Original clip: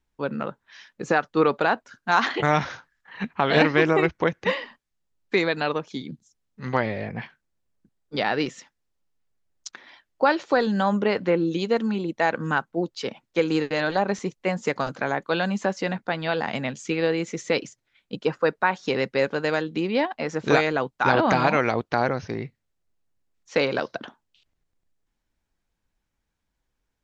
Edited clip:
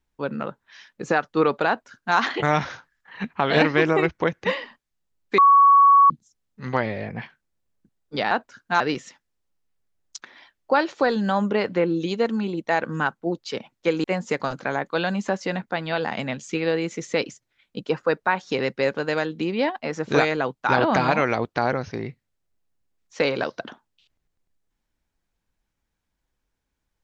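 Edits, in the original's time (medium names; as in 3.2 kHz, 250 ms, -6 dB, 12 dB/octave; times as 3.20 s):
1.68–2.17 s: copy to 8.31 s
5.38–6.10 s: bleep 1.12 kHz -10 dBFS
13.55–14.40 s: delete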